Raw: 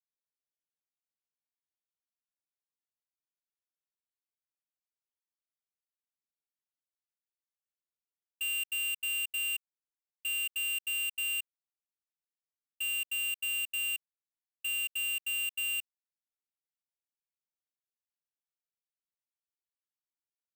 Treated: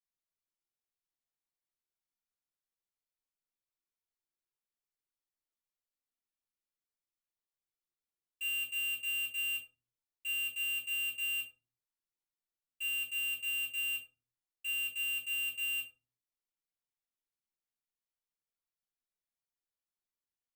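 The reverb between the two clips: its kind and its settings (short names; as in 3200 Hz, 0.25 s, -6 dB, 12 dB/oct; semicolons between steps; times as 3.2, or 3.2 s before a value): shoebox room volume 130 m³, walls furnished, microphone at 3.1 m; gain -10 dB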